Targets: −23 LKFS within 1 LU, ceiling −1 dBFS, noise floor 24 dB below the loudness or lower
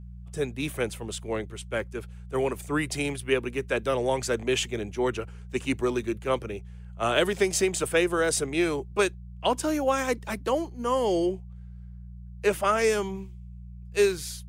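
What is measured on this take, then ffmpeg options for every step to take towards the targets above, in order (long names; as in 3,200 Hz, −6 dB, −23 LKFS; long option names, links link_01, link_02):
mains hum 60 Hz; hum harmonics up to 180 Hz; level of the hum −40 dBFS; integrated loudness −27.5 LKFS; sample peak −9.0 dBFS; target loudness −23.0 LKFS
→ -af "bandreject=frequency=60:width_type=h:width=4,bandreject=frequency=120:width_type=h:width=4,bandreject=frequency=180:width_type=h:width=4"
-af "volume=4.5dB"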